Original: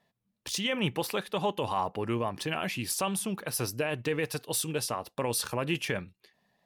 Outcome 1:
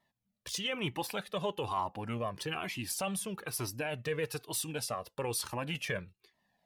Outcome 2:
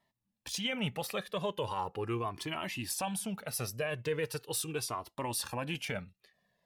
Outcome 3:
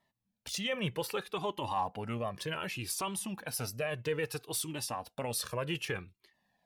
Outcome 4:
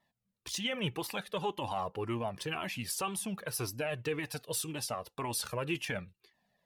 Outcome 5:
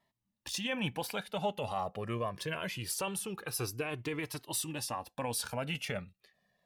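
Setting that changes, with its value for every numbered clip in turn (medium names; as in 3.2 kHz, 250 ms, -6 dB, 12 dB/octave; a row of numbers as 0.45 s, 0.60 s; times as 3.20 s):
Shepard-style flanger, rate: 1.1 Hz, 0.39 Hz, 0.64 Hz, 1.9 Hz, 0.23 Hz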